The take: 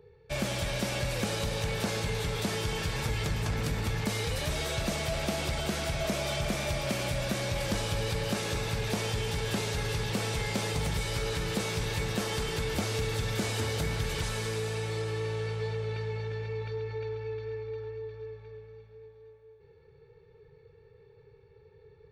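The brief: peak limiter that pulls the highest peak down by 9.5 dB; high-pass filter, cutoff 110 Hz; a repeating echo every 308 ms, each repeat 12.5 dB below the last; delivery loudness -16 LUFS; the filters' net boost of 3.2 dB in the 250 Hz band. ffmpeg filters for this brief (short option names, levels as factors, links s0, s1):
-af "highpass=110,equalizer=f=250:t=o:g=5,alimiter=level_in=1.19:limit=0.0631:level=0:latency=1,volume=0.841,aecho=1:1:308|616|924:0.237|0.0569|0.0137,volume=8.41"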